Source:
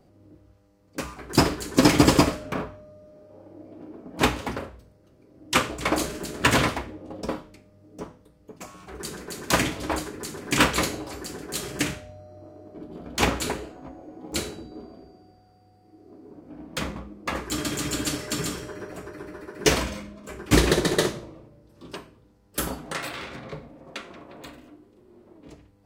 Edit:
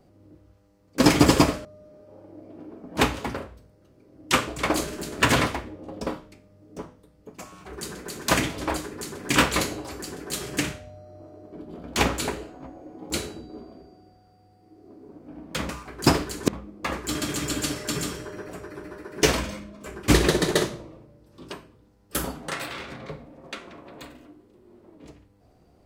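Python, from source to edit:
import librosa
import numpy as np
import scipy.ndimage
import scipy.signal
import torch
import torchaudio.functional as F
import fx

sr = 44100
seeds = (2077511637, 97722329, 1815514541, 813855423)

y = fx.edit(x, sr, fx.move(start_s=1.0, length_s=0.79, to_s=16.91),
    fx.cut(start_s=2.44, length_s=0.43), tone=tone)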